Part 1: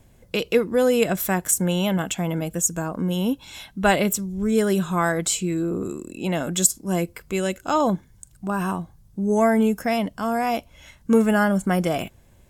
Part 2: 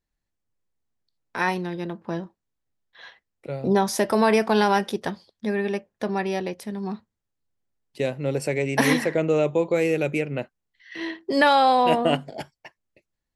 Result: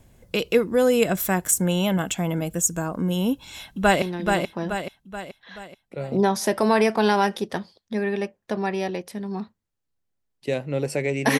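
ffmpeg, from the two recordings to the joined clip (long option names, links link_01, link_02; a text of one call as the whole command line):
ffmpeg -i cue0.wav -i cue1.wav -filter_complex "[0:a]apad=whole_dur=11.39,atrim=end=11.39,atrim=end=4.022[link_01];[1:a]atrim=start=1.538:end=8.91[link_02];[link_01][link_02]acrossfade=duration=0.004:curve1=hsin:curve2=hsin,asplit=2[link_03][link_04];[link_04]afade=type=in:start_time=3.33:duration=0.01,afade=type=out:start_time=4.02:duration=0.01,aecho=0:1:430|860|1290|1720|2150|2580:0.630957|0.315479|0.157739|0.0788697|0.0394348|0.0197174[link_05];[link_03][link_05]amix=inputs=2:normalize=0" out.wav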